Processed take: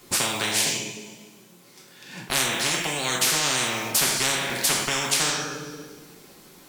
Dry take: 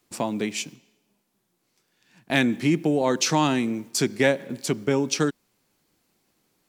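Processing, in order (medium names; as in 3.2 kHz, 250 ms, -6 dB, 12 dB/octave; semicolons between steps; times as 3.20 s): two-slope reverb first 0.46 s, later 1.5 s, from -19 dB, DRR -1 dB; spectrum-flattening compressor 10:1; trim -4.5 dB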